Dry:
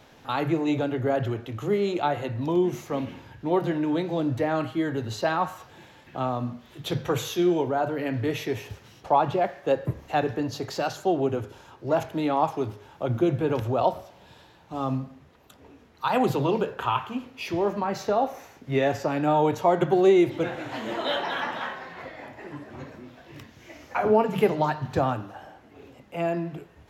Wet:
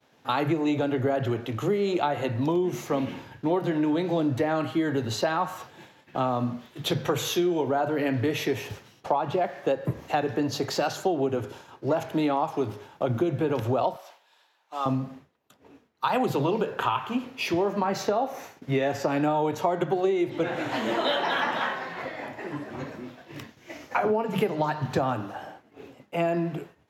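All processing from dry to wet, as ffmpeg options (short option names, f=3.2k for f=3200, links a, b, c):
-filter_complex "[0:a]asettb=1/sr,asplit=3[a][b][c];[a]atrim=end=13.964[d];[b]atrim=start=13.96:end=14.86,asetpts=PTS-STARTPTS,afade=t=in:d=0.004:c=qsin,afade=t=out:st=0.896:d=0.004:c=qsin,highpass=840,acompressor=mode=upward:threshold=-49dB:ratio=2.5:attack=3.2:release=140:knee=2.83:detection=peak[e];[c]atrim=start=14.856[f];[d][e]acrossfade=d=0.004:c1=hsin:c2=qsin[g];[g][f]acrossfade=d=0.004:c1=qsin:c2=hsin,asettb=1/sr,asplit=3[h][i][j];[h]atrim=end=19.914[k];[i]atrim=start=19.91:end=20.56,asetpts=PTS-STARTPTS,afade=t=in:d=0.004:c=qsin,afade=t=out:st=0.646:d=0.004:c=qsin,highshelf=f=7.9k:g=-4.5,bandreject=f=60:t=h:w=6,bandreject=f=120:t=h:w=6,bandreject=f=180:t=h:w=6,bandreject=f=240:t=h:w=6,bandreject=f=300:t=h:w=6,bandreject=f=360:t=h:w=6,bandreject=f=420:t=h:w=6[l];[j]atrim=start=20.556[m];[k][l]acrossfade=d=0.004:c1=hsin:c2=qsin[n];[n][m]acrossfade=d=0.004:c1=qsin:c2=hsin,highpass=120,agate=range=-33dB:threshold=-44dB:ratio=3:detection=peak,acompressor=threshold=-26dB:ratio=10,volume=5dB"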